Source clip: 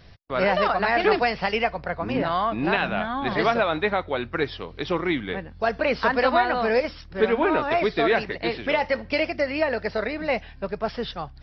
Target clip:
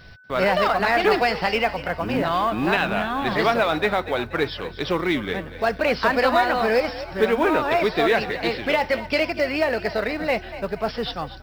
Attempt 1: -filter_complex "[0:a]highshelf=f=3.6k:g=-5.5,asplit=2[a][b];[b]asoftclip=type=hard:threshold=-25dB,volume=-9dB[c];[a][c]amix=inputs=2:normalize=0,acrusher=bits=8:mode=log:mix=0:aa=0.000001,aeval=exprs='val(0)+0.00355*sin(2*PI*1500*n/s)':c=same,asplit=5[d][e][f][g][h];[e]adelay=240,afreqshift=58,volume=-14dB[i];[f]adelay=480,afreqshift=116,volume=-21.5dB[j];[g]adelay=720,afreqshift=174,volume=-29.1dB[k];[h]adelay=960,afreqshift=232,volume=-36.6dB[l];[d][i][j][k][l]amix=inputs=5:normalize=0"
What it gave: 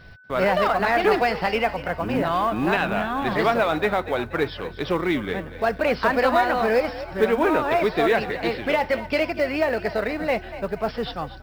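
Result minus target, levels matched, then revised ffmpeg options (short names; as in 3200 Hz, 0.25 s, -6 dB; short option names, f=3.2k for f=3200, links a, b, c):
4000 Hz band -3.5 dB
-filter_complex "[0:a]highshelf=f=3.6k:g=3.5,asplit=2[a][b];[b]asoftclip=type=hard:threshold=-25dB,volume=-9dB[c];[a][c]amix=inputs=2:normalize=0,acrusher=bits=8:mode=log:mix=0:aa=0.000001,aeval=exprs='val(0)+0.00355*sin(2*PI*1500*n/s)':c=same,asplit=5[d][e][f][g][h];[e]adelay=240,afreqshift=58,volume=-14dB[i];[f]adelay=480,afreqshift=116,volume=-21.5dB[j];[g]adelay=720,afreqshift=174,volume=-29.1dB[k];[h]adelay=960,afreqshift=232,volume=-36.6dB[l];[d][i][j][k][l]amix=inputs=5:normalize=0"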